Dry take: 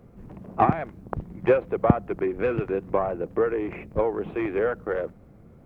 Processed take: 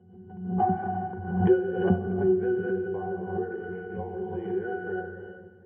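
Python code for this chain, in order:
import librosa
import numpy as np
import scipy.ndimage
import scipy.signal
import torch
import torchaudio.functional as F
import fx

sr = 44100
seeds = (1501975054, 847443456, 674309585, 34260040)

y = scipy.signal.sosfilt(scipy.signal.butter(2, 130.0, 'highpass', fs=sr, output='sos'), x)
y = fx.octave_resonator(y, sr, note='F#', decay_s=0.27)
y = fx.echo_feedback(y, sr, ms=238, feedback_pct=54, wet_db=-16.0)
y = fx.rev_gated(y, sr, seeds[0], gate_ms=430, shape='flat', drr_db=1.5)
y = fx.pre_swell(y, sr, db_per_s=72.0)
y = y * librosa.db_to_amplitude(7.5)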